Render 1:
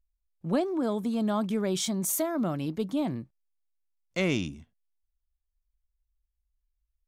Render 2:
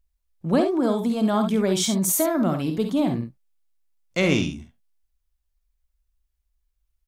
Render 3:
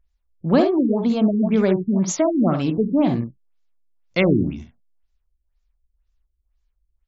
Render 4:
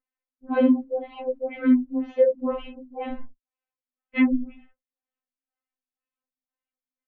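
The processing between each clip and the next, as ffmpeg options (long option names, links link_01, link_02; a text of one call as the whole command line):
ffmpeg -i in.wav -af "aecho=1:1:51|68:0.355|0.355,volume=6dB" out.wav
ffmpeg -i in.wav -af "afftfilt=real='re*lt(b*sr/1024,410*pow(7700/410,0.5+0.5*sin(2*PI*2*pts/sr)))':imag='im*lt(b*sr/1024,410*pow(7700/410,0.5+0.5*sin(2*PI*2*pts/sr)))':win_size=1024:overlap=0.75,volume=4dB" out.wav
ffmpeg -i in.wav -af "highpass=frequency=150:width_type=q:width=0.5412,highpass=frequency=150:width_type=q:width=1.307,lowpass=frequency=2900:width_type=q:width=0.5176,lowpass=frequency=2900:width_type=q:width=0.7071,lowpass=frequency=2900:width_type=q:width=1.932,afreqshift=-120,afftfilt=real='re*3.46*eq(mod(b,12),0)':imag='im*3.46*eq(mod(b,12),0)':win_size=2048:overlap=0.75,volume=-2dB" out.wav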